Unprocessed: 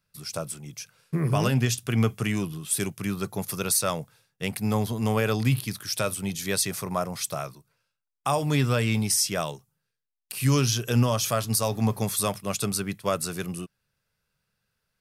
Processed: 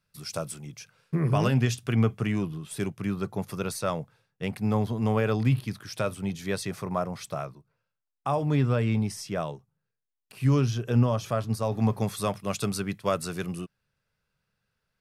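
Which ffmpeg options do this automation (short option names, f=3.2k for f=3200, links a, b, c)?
-af "asetnsamples=n=441:p=0,asendcmd='0.66 lowpass f 2900;1.95 lowpass f 1600;7.45 lowpass f 1000;11.72 lowpass f 2200;12.39 lowpass f 3800',lowpass=f=7.2k:p=1"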